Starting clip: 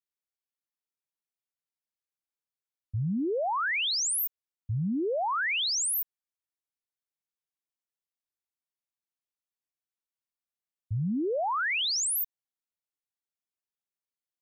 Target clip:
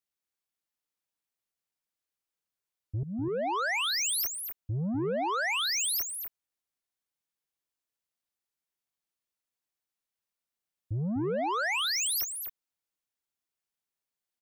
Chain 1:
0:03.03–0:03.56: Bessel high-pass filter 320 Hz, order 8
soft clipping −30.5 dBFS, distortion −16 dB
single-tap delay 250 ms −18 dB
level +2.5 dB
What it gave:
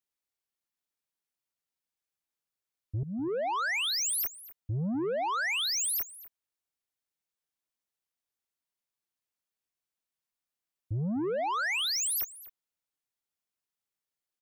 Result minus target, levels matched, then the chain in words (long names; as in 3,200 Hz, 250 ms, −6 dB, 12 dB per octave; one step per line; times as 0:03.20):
echo-to-direct −11 dB
0:03.03–0:03.56: Bessel high-pass filter 320 Hz, order 8
soft clipping −30.5 dBFS, distortion −16 dB
single-tap delay 250 ms −7 dB
level +2.5 dB